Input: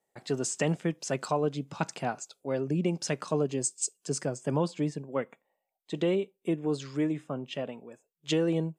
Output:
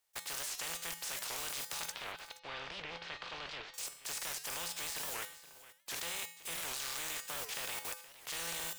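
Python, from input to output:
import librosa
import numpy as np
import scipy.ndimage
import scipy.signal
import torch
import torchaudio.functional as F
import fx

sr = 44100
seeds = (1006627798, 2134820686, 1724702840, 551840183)

p1 = fx.spec_flatten(x, sr, power=0.2)
p2 = fx.over_compress(p1, sr, threshold_db=-36.0, ratio=-1.0)
p3 = p1 + (p2 * 10.0 ** (1.0 / 20.0))
p4 = fx.peak_eq(p3, sr, hz=200.0, db=-13.5, octaves=1.9)
p5 = fx.level_steps(p4, sr, step_db=20)
p6 = fx.comb_fb(p5, sr, f0_hz=170.0, decay_s=0.64, harmonics='odd', damping=0.0, mix_pct=80)
p7 = fx.lowpass(p6, sr, hz=3800.0, slope=24, at=(1.92, 3.74))
p8 = p7 + fx.echo_single(p7, sr, ms=473, db=-16.5, dry=0)
p9 = fx.record_warp(p8, sr, rpm=78.0, depth_cents=250.0)
y = p9 * 10.0 ** (12.0 / 20.0)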